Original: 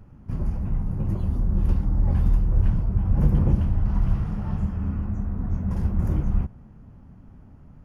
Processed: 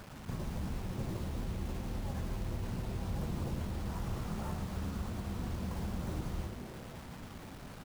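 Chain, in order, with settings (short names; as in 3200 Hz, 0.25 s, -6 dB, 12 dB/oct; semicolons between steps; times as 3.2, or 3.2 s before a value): LPF 1100 Hz 6 dB/oct; tilt +3.5 dB/oct; notches 50/100/150/200/250/300/350/400 Hz; limiter -28 dBFS, peak gain reduction 7 dB; compressor 4:1, threshold -47 dBFS, peak gain reduction 13 dB; requantised 10-bit, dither none; frequency-shifting echo 0.112 s, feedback 63%, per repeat -140 Hz, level -8 dB; gain +9.5 dB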